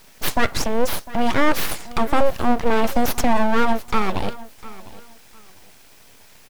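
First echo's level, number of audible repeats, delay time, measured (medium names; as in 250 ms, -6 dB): -18.5 dB, 2, 702 ms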